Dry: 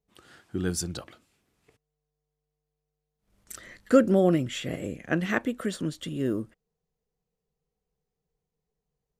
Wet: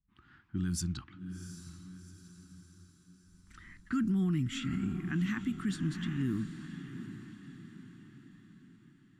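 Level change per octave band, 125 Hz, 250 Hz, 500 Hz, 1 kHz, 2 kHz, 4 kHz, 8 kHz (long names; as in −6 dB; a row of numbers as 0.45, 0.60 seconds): −1.0, −5.0, −22.0, −13.0, −9.0, −6.0, −7.0 decibels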